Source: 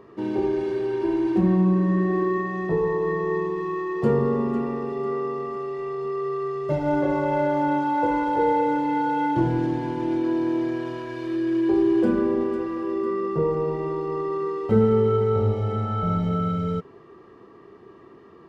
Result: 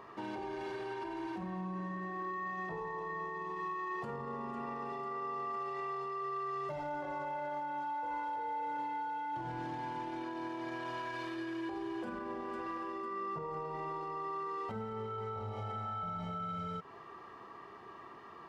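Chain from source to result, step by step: compression 6:1, threshold -28 dBFS, peak gain reduction 14 dB; resonant low shelf 580 Hz -9.5 dB, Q 1.5; peak limiter -34.5 dBFS, peak gain reduction 11.5 dB; trim +2 dB

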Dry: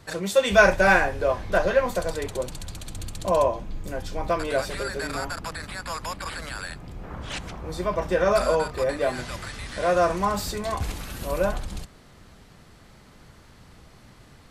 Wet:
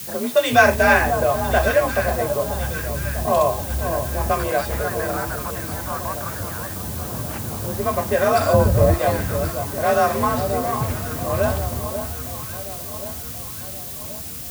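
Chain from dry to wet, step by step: 8.53–8.94 s: tilt EQ -4.5 dB/octave; in parallel at 0 dB: compression, threshold -34 dBFS, peak gain reduction 22 dB; on the sum: level-controlled noise filter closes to 340 Hz, open at -15 dBFS; on a send: echo whose repeats swap between lows and highs 539 ms, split 1.1 kHz, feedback 71%, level -8 dB; on the sum: added noise blue -35 dBFS; frequency shift +45 Hz; trim +1.5 dB

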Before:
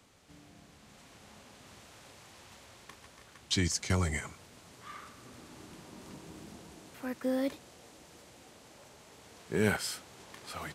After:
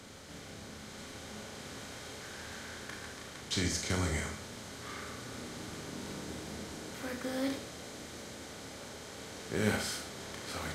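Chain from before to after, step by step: spectral levelling over time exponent 0.6; 2.22–3.13 s: peaking EQ 1.6 kHz +8 dB 0.3 oct; Schroeder reverb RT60 0.4 s, combs from 26 ms, DRR 2.5 dB; trim -6 dB

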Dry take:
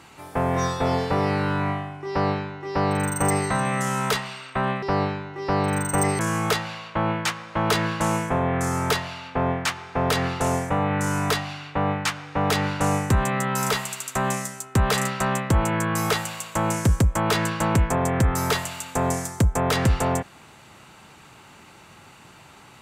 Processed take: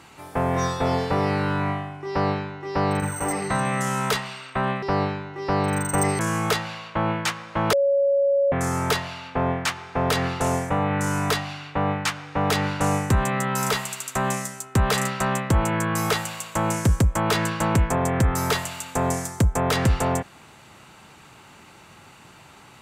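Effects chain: 3.00–3.50 s: detune thickener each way 19 cents; 7.73–8.52 s: bleep 558 Hz -16.5 dBFS

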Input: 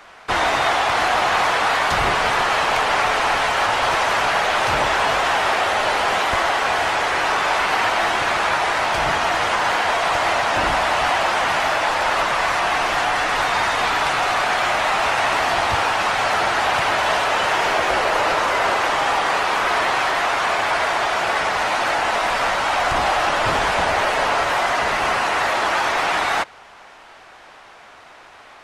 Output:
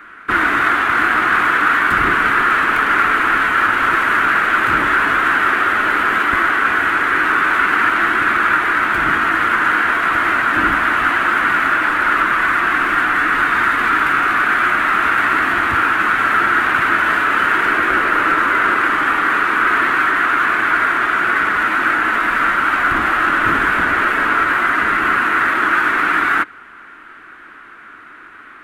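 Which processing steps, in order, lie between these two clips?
self-modulated delay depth 0.075 ms; FFT filter 140 Hz 0 dB, 310 Hz +11 dB, 540 Hz -8 dB, 810 Hz -10 dB, 1.4 kHz +12 dB, 5.3 kHz -15 dB, 12 kHz -1 dB

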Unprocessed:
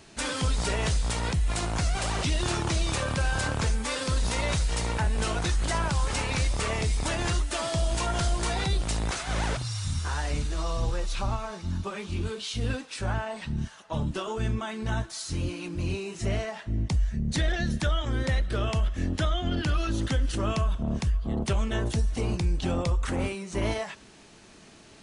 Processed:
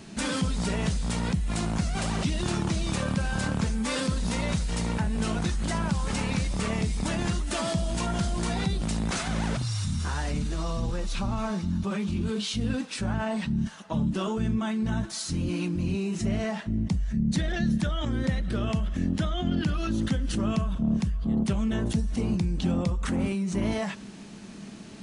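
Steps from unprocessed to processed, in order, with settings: peaking EQ 200 Hz +14.5 dB 0.81 oct; in parallel at -2 dB: compressor with a negative ratio -31 dBFS, ratio -1; on the sum: trim -6 dB

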